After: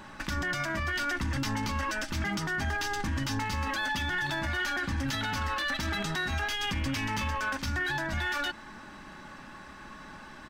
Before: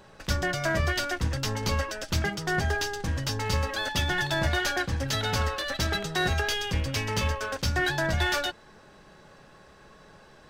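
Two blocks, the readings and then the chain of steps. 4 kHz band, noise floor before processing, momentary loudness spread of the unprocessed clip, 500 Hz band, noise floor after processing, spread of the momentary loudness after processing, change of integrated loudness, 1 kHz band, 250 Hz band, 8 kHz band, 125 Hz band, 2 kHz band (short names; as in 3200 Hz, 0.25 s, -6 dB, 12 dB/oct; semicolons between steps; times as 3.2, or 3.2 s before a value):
-4.5 dB, -54 dBFS, 4 LU, -9.0 dB, -47 dBFS, 16 LU, -3.0 dB, -1.5 dB, -0.5 dB, -5.5 dB, -5.5 dB, -1.0 dB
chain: comb 3.4 ms, depth 32%; in parallel at -1 dB: negative-ratio compressor -30 dBFS; on the sum: graphic EQ 250/500/1000/2000 Hz +8/-10/+6/+5 dB; limiter -19.5 dBFS, peak gain reduction 12 dB; gain -3.5 dB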